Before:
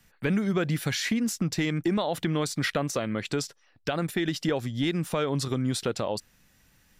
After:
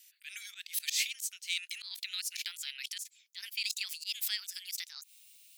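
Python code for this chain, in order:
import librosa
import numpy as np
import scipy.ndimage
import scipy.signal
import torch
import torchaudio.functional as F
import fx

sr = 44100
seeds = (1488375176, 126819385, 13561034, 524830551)

y = fx.speed_glide(x, sr, from_pct=101, to_pct=150)
y = scipy.signal.sosfilt(scipy.signal.cheby2(4, 70, 580.0, 'highpass', fs=sr, output='sos'), y)
y = fx.high_shelf(y, sr, hz=8300.0, db=9.0)
y = fx.auto_swell(y, sr, attack_ms=112.0)
y = y * 10.0 ** (3.0 / 20.0)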